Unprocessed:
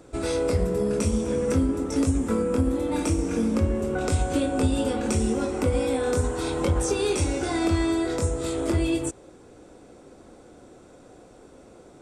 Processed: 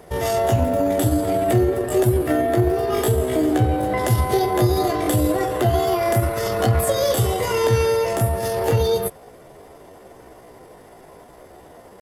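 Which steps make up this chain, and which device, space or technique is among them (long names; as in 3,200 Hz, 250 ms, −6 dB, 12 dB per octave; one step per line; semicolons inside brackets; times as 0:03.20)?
chipmunk voice (pitch shifter +5.5 semitones)
level +5 dB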